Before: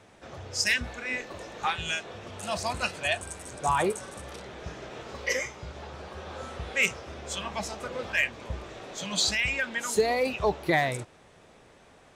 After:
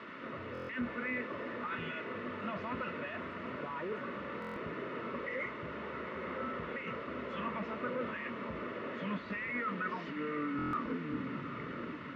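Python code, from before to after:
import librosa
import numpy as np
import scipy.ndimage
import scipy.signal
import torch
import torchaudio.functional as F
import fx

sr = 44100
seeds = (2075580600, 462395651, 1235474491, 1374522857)

y = fx.tape_stop_end(x, sr, length_s=2.94)
y = fx.over_compress(y, sr, threshold_db=-32.0, ratio=-1.0)
y = fx.quant_dither(y, sr, seeds[0], bits=6, dither='triangular')
y = fx.notch_comb(y, sr, f0_hz=800.0)
y = 10.0 ** (-30.5 / 20.0) * np.tanh(y / 10.0 ** (-30.5 / 20.0))
y = fx.cabinet(y, sr, low_hz=150.0, low_slope=12, high_hz=2200.0, hz=(240.0, 740.0, 1300.0), db=(7, -10, 3))
y = fx.echo_diffused(y, sr, ms=823, feedback_pct=40, wet_db=-10.0)
y = fx.buffer_glitch(y, sr, at_s=(0.53, 4.4, 10.57), block=1024, repeats=6)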